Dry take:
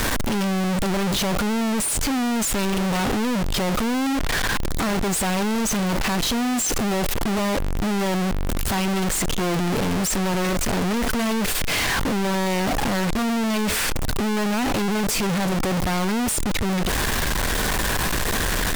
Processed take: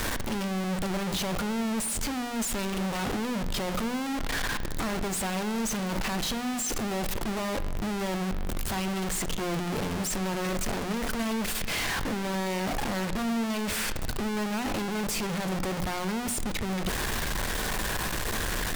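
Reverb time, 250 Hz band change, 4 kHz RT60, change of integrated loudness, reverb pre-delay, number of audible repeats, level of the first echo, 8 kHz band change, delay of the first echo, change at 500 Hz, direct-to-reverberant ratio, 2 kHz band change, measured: 1.5 s, −8.0 dB, 1.4 s, −7.5 dB, 4 ms, no echo audible, no echo audible, −7.5 dB, no echo audible, −7.5 dB, 11.5 dB, −7.0 dB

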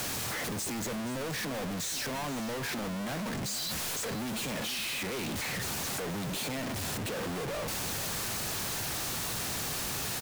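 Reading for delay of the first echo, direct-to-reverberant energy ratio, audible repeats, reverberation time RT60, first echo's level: 477 ms, no reverb audible, 1, no reverb audible, −13.5 dB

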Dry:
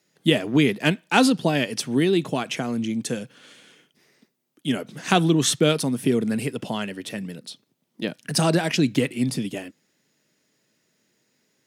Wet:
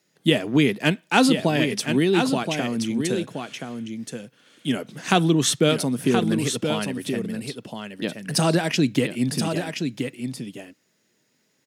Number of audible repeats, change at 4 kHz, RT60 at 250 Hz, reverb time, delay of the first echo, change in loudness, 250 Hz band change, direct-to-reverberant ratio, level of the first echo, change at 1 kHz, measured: 1, +1.0 dB, no reverb audible, no reverb audible, 1,025 ms, 0.0 dB, +1.0 dB, no reverb audible, −6.5 dB, +1.0 dB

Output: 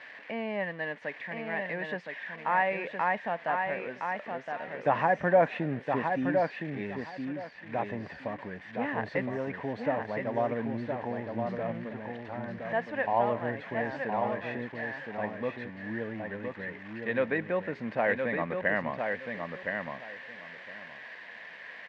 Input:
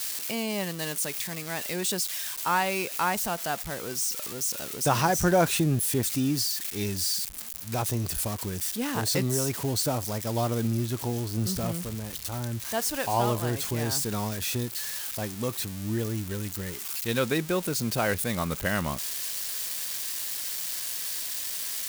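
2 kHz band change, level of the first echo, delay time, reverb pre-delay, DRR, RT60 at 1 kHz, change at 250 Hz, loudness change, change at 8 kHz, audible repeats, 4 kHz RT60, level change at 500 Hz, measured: +2.0 dB, −5.0 dB, 1,016 ms, no reverb audible, no reverb audible, no reverb audible, −4.5 dB, −4.0 dB, below −40 dB, 3, no reverb audible, +1.0 dB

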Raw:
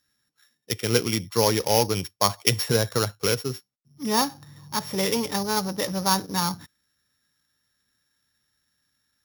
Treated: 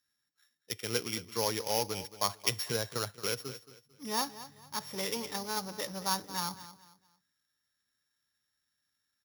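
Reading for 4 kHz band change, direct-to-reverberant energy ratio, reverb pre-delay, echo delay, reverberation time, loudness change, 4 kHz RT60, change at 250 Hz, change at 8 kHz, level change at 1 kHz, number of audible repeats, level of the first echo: −8.5 dB, no reverb audible, no reverb audible, 223 ms, no reverb audible, −9.5 dB, no reverb audible, −13.5 dB, −8.5 dB, −9.5 dB, 2, −15.0 dB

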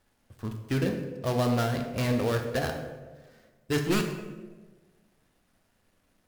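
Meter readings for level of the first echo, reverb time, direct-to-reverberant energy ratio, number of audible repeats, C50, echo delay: no echo audible, 1.3 s, 3.5 dB, no echo audible, 6.5 dB, no echo audible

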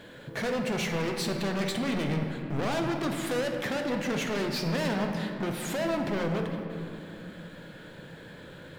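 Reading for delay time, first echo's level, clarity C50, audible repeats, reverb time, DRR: no echo audible, no echo audible, 4.0 dB, no echo audible, 2.8 s, 2.5 dB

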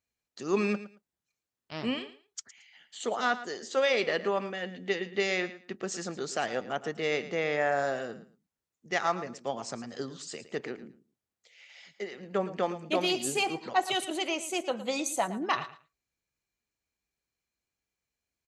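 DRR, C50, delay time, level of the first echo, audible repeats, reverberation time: no reverb audible, no reverb audible, 112 ms, −14.5 dB, 2, no reverb audible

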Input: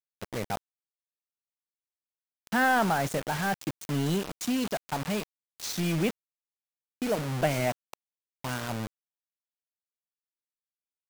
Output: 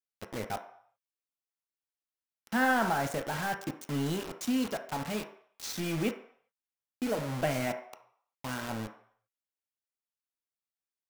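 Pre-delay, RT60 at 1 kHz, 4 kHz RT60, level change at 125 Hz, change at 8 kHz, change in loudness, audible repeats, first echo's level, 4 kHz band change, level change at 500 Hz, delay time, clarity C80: 3 ms, 0.65 s, 0.60 s, −5.5 dB, −4.0 dB, −3.0 dB, no echo audible, no echo audible, −3.5 dB, −3.0 dB, no echo audible, 13.0 dB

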